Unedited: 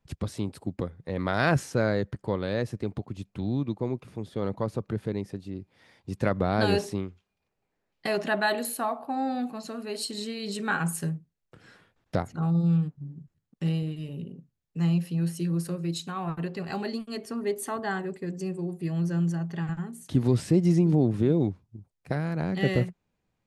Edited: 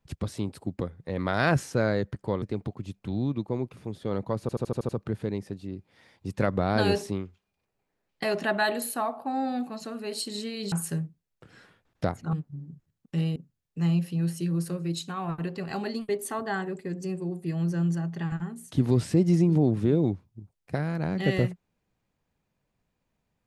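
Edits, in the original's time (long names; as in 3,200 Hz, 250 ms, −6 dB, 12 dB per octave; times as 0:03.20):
0:02.42–0:02.73: remove
0:04.72: stutter 0.08 s, 7 plays
0:10.55–0:10.83: remove
0:12.44–0:12.81: remove
0:13.84–0:14.35: remove
0:17.08–0:17.46: remove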